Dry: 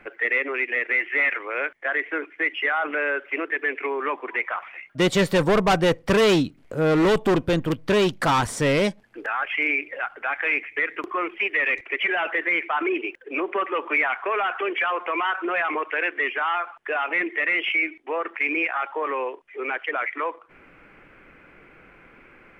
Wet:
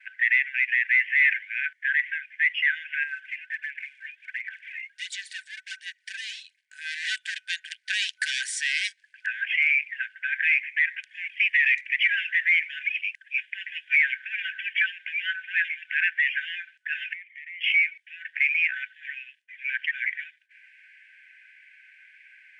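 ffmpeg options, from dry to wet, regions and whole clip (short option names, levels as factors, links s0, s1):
-filter_complex "[0:a]asettb=1/sr,asplit=3[s0][s1][s2];[s0]atrim=end=3.034[s3];[s1]atrim=start=3.03:end=6.61,asetpts=PTS-STARTPTS,afade=t=in:d=0.004:c=qsin,afade=t=out:st=3.576:d=0.004:c=qsin,aphaser=in_gain=1:out_gain=1:delay=2.9:decay=0.51:speed=1.4:type=sinusoidal,acompressor=threshold=0.02:ratio=2.5:attack=3.2:release=140:knee=1:detection=peak[s4];[s2]atrim=start=6.606[s5];[s3][s4]acrossfade=d=0.004:c1=hsin:c2=qsin[s6];[s6][s5]acrossfade=d=0.004:c1=qsin:c2=hsin,asettb=1/sr,asplit=3[s7][s8][s9];[s7]atrim=end=11.104[s10];[s8]atrim=start=11.1:end=13.95,asetpts=PTS-STARTPTS,afade=t=in:d=0.004:c=qsin,afade=t=out:st=2.846:d=0.004:c=qsin,asuperstop=centerf=1200:order=4:qfactor=1.8,highshelf=f=5900:g=6[s11];[s9]atrim=start=13.946[s12];[s10][s11]acrossfade=d=0.004:c1=hsin:c2=qsin[s13];[s13][s12]acrossfade=d=0.004:c1=qsin:c2=hsin,asettb=1/sr,asplit=3[s14][s15][s16];[s14]atrim=end=17.134[s17];[s15]atrim=start=17.13:end=17.61,asetpts=PTS-STARTPTS,afade=t=in:d=0.004:c=qsin,afade=t=out:st=0.476:d=0.004:c=qsin,asplit=3[s18][s19][s20];[s18]bandpass=f=270:t=q:w=8,volume=1[s21];[s19]bandpass=f=2290:t=q:w=8,volume=0.501[s22];[s20]bandpass=f=3010:t=q:w=8,volume=0.355[s23];[s21][s22][s23]amix=inputs=3:normalize=0,acompressor=threshold=0.00891:ratio=3:attack=3.2:release=140:knee=1:detection=peak[s24];[s16]atrim=start=17.606[s25];[s17][s24]acrossfade=d=0.004:c1=hsin:c2=qsin[s26];[s26][s25]acrossfade=d=0.004:c1=qsin:c2=hsin,afftfilt=real='re*between(b*sr/4096,1500,10000)':imag='im*between(b*sr/4096,1500,10000)':win_size=4096:overlap=0.75,agate=range=0.0224:threshold=0.00141:ratio=3:detection=peak,volume=1.26"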